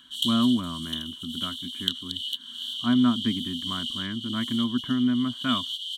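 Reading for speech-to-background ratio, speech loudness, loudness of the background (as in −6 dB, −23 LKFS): 3.5 dB, −27.5 LKFS, −31.0 LKFS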